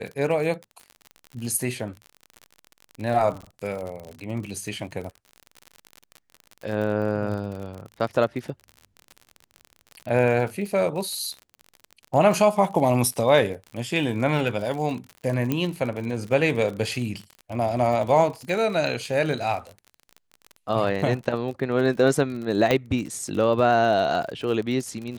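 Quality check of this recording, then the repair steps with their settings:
crackle 50/s -31 dBFS
15.52 pop -11 dBFS
22.71 pop -8 dBFS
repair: de-click

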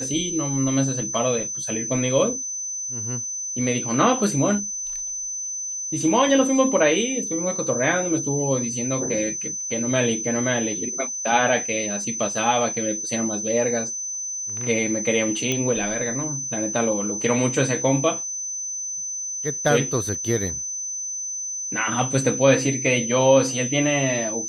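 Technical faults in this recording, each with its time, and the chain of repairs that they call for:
tone 6100 Hz -27 dBFS
15.52 pop -9 dBFS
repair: de-click; notch 6100 Hz, Q 30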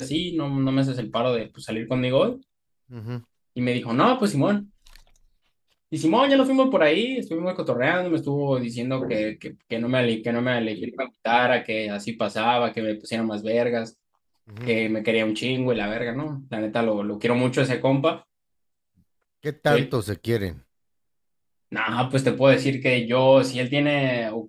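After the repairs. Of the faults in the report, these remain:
none

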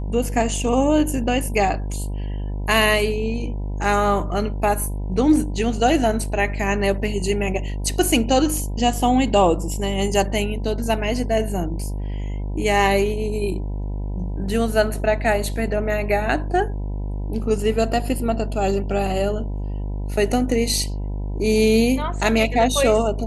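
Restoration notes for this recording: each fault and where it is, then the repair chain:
buzz 50 Hz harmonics 20 -26 dBFS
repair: de-hum 50 Hz, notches 20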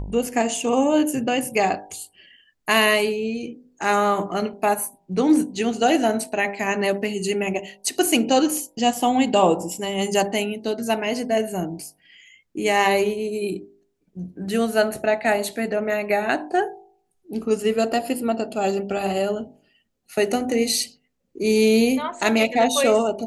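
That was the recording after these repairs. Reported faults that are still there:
none

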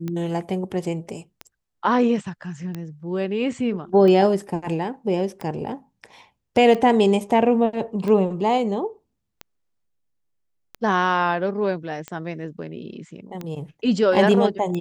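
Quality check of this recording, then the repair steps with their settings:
tick 45 rpm -17 dBFS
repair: de-click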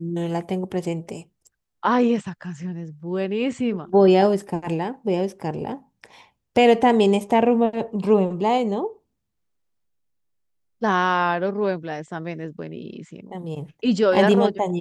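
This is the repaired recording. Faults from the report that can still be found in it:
none

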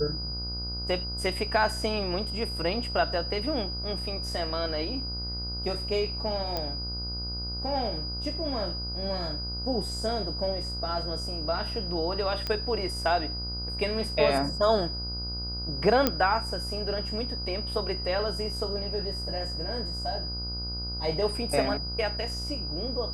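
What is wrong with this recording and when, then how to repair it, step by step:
buzz 60 Hz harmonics 26 -36 dBFS
tone 4900 Hz -34 dBFS
6.57 pop -16 dBFS
12.47 pop -17 dBFS
16.07 pop -7 dBFS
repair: de-click; de-hum 60 Hz, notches 26; notch 4900 Hz, Q 30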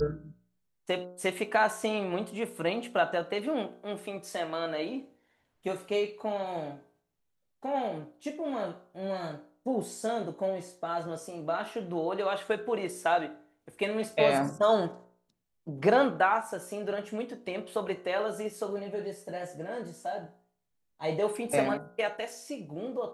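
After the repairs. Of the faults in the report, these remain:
16.07 pop

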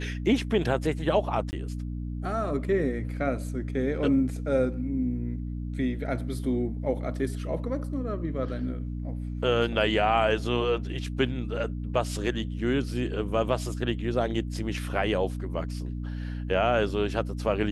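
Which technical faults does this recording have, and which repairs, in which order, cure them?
hum 60 Hz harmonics 5 -33 dBFS
1.51–1.53 gap 19 ms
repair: de-hum 60 Hz, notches 5; interpolate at 1.51, 19 ms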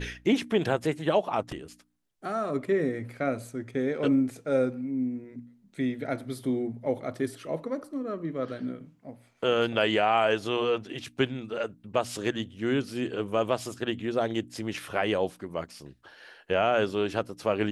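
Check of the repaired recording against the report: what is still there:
none

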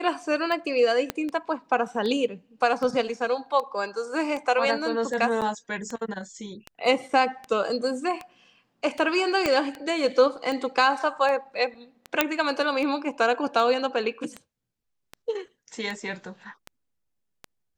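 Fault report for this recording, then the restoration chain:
tick 78 rpm -20 dBFS
1.1 pop -11 dBFS
5.41–5.42 gap 7.5 ms
9.46 pop -9 dBFS
12.21 pop -3 dBFS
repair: de-click; interpolate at 5.41, 7.5 ms

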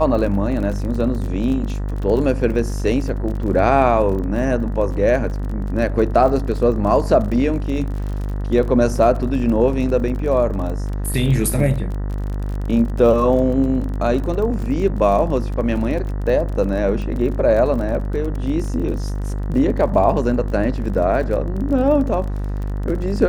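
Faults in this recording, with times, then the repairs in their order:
buzz 50 Hz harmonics 39 -23 dBFS
crackle 37/s -27 dBFS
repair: de-click; de-hum 50 Hz, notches 39

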